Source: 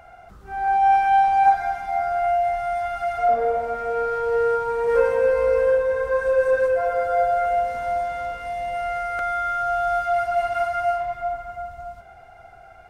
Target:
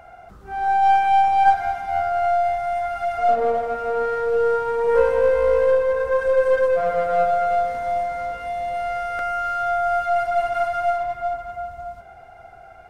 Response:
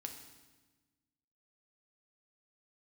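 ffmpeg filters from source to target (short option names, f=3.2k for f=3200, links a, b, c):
-filter_complex "[0:a]equalizer=f=390:w=0.37:g=3.5,asplit=2[a][b];[b]aeval=exprs='clip(val(0),-1,0.0376)':c=same,volume=-3dB[c];[a][c]amix=inputs=2:normalize=0,volume=-5dB"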